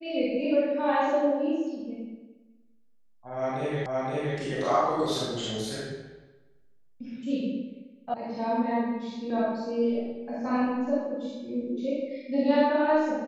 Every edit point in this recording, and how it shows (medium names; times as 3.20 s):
3.86 s: repeat of the last 0.52 s
8.14 s: sound stops dead